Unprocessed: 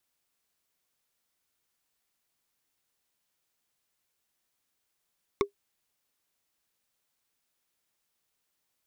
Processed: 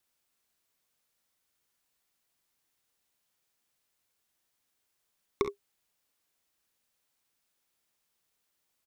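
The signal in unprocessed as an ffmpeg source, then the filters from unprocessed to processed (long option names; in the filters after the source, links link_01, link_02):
-f lavfi -i "aevalsrc='0.141*pow(10,-3*t/0.11)*sin(2*PI*403*t)+0.1*pow(10,-3*t/0.033)*sin(2*PI*1111.1*t)+0.0708*pow(10,-3*t/0.015)*sin(2*PI*2177.8*t)+0.0501*pow(10,-3*t/0.008)*sin(2*PI*3600*t)+0.0355*pow(10,-3*t/0.005)*sin(2*PI*5376*t)':duration=0.45:sample_rate=44100"
-af "aecho=1:1:37|51|66:0.178|0.2|0.299"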